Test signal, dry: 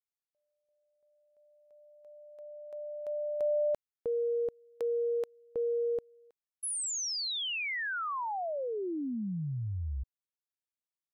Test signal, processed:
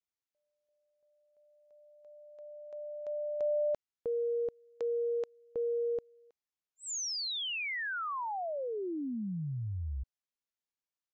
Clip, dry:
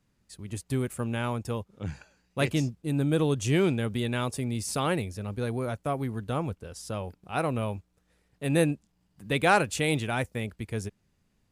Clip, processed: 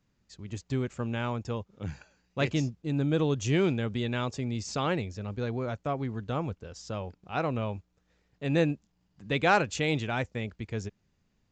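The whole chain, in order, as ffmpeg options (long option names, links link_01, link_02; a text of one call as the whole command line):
ffmpeg -i in.wav -af "aresample=16000,aresample=44100,volume=-1.5dB" out.wav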